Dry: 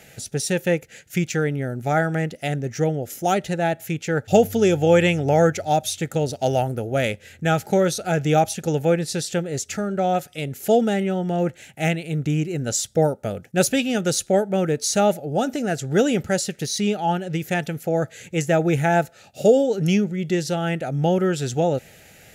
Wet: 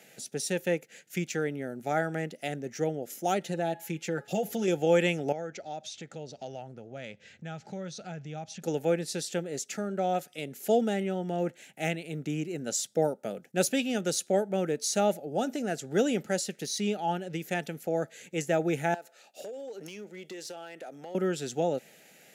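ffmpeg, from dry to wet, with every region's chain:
-filter_complex "[0:a]asettb=1/sr,asplit=3[s0][s1][s2];[s0]atrim=end=3.404[s3];[s1]atrim=start=3.4:end=4.68,asetpts=PTS-STARTPTS,afade=t=in:d=0.004:c=qsin,afade=t=out:st=1.276:d=0.004:c=qsin,aecho=1:1:5.8:0.71,atrim=end_sample=56448,bandreject=f=419.6:t=h:w=4,bandreject=f=839.2:t=h:w=4,bandreject=f=1258.8:t=h:w=4,bandreject=f=1678.4:t=h:w=4,bandreject=f=2098:t=h:w=4,bandreject=f=2517.6:t=h:w=4,bandreject=f=2937.2:t=h:w=4,bandreject=f=3356.8:t=h:w=4,bandreject=f=3776.4:t=h:w=4,bandreject=f=4196:t=h:w=4,bandreject=f=4615.6:t=h:w=4,bandreject=f=5035.2:t=h:w=4,acompressor=threshold=0.112:ratio=3:attack=3.2:release=140:knee=1:detection=peak[s4];[s2]atrim=start=4.676[s5];[s3][s4]acrossfade=d=0.004:c1=hsin:c2=qsin[s6];[s6][s5]acrossfade=d=0.004:c1=qsin:c2=hsin,asettb=1/sr,asplit=3[s7][s8][s9];[s7]atrim=end=5.324[s10];[s8]atrim=start=5.32:end=8.62,asetpts=PTS-STARTPTS,afade=t=in:d=0.004:c=qsin,afade=t=out:st=3.296:d=0.004:c=qsin,lowpass=f=6500:w=0.5412,lowpass=f=6500:w=1.3066,asubboost=boost=11:cutoff=120,acompressor=threshold=0.0251:ratio=2.5:attack=3.2:release=140:knee=1:detection=peak[s11];[s9]atrim=start=8.616[s12];[s10][s11]acrossfade=d=0.004:c1=hsin:c2=qsin[s13];[s13][s12]acrossfade=d=0.004:c1=qsin:c2=hsin,asettb=1/sr,asplit=3[s14][s15][s16];[s14]atrim=end=18.944[s17];[s15]atrim=start=18.94:end=21.15,asetpts=PTS-STARTPTS,afade=t=in:d=0.004:c=qsin,afade=t=out:st=2.206:d=0.004:c=qsin,highpass=400,acompressor=threshold=0.0355:ratio=16:attack=3.2:release=140:knee=1:detection=peak,asoftclip=type=hard:threshold=0.0398[s18];[s16]atrim=start=21.146[s19];[s17][s18]acrossfade=d=0.004:c1=hsin:c2=qsin[s20];[s20][s19]acrossfade=d=0.004:c1=qsin:c2=hsin,highpass=f=180:w=0.5412,highpass=f=180:w=1.3066,equalizer=f=1300:w=1.5:g=-2,volume=0.447"

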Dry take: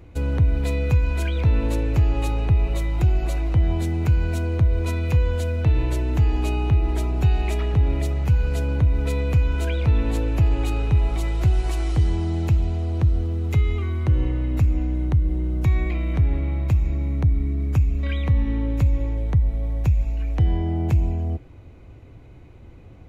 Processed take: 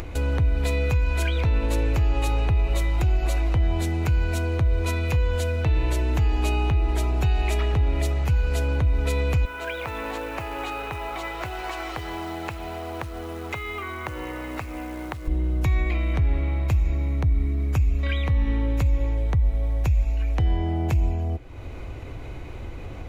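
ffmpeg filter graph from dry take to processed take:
-filter_complex "[0:a]asettb=1/sr,asplit=3[s0][s1][s2];[s0]atrim=end=9.454[s3];[s1]atrim=start=9.45:end=15.28,asetpts=PTS-STARTPTS,afade=t=in:d=0.004:c=qsin,afade=t=out:st=5.826:d=0.004:c=qsin,bandpass=f=1200:t=q:w=0.8,acrusher=bits=6:mode=log:mix=0:aa=0.000001[s4];[s2]atrim=start=15.276[s5];[s3][s4]acrossfade=d=0.004:c1=hsin:c2=qsin[s6];[s6][s5]acrossfade=d=0.004:c1=qsin:c2=hsin,equalizer=f=160:t=o:w=2.5:g=-8.5,acompressor=mode=upward:threshold=0.0398:ratio=2.5,alimiter=limit=0.126:level=0:latency=1:release=92,volume=1.58"

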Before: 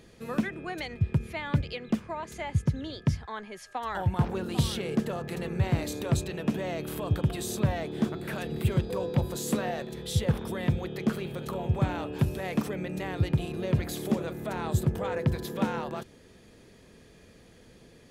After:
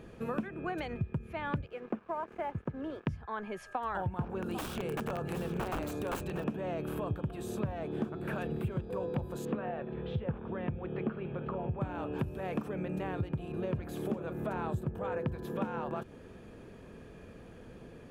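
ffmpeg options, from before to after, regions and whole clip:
-filter_complex "[0:a]asettb=1/sr,asplit=3[s0][s1][s2];[s0]atrim=end=1.664[s3];[s1]atrim=start=1.66:end=3.07,asetpts=PTS-STARTPTS,afade=t=in:d=0.004:c=qsin,afade=t=out:st=1.406:d=0.004:c=qsin,acrossover=split=240 2500:gain=0.2 1 0.0708[s4][s5][s6];[s4][s5][s6]amix=inputs=3:normalize=0,aeval=exprs='sgn(val(0))*max(abs(val(0))-0.00188,0)':c=same[s7];[s2]atrim=start=3.066[s8];[s3][s7]acrossfade=d=0.004:c1=hsin:c2=qsin[s9];[s9][s8]acrossfade=d=0.004:c1=qsin:c2=hsin,asettb=1/sr,asplit=3[s10][s11][s12];[s10]atrim=end=4.424[s13];[s11]atrim=start=4.42:end=6.44,asetpts=PTS-STARTPTS,afade=t=in:d=0.004:c=qsin,afade=t=out:st=2.016:d=0.004:c=qsin,bass=f=250:g=1,treble=f=4000:g=5,aeval=exprs='(mod(15*val(0)+1,2)-1)/15':c=same,aecho=1:1:761:0.251,atrim=end_sample=89082[s14];[s12]atrim=start=6.436[s15];[s13][s14]acrossfade=d=0.004:c1=hsin:c2=qsin[s16];[s16][s15]acrossfade=d=0.004:c1=qsin:c2=hsin,asettb=1/sr,asplit=3[s17][s18][s19];[s17]atrim=end=9.454[s20];[s18]atrim=start=9.45:end=11.81,asetpts=PTS-STARTPTS,afade=t=in:d=0.004:c=qsin,afade=t=out:st=2.356:d=0.004:c=qsin,tremolo=f=1.2:d=0.4,lowpass=f=3000:w=0.5412,lowpass=f=3000:w=1.3066[s21];[s19]atrim=start=11.806[s22];[s20][s21]acrossfade=d=0.004:c1=hsin:c2=qsin[s23];[s23][s22]acrossfade=d=0.004:c1=qsin:c2=hsin,equalizer=f=2000:w=4.1:g=-12.5,acompressor=threshold=0.0126:ratio=4,highshelf=f=3000:t=q:w=1.5:g=-11,volume=1.68"

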